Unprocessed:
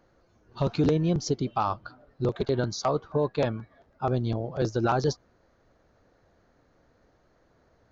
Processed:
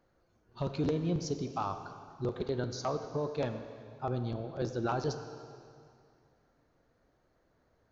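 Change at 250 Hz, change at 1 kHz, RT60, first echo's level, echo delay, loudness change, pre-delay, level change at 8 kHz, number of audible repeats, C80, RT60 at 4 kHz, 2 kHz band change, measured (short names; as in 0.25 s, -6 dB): -7.0 dB, -7.5 dB, 2.3 s, none, none, -7.5 dB, 6 ms, n/a, none, 9.5 dB, 2.2 s, -7.5 dB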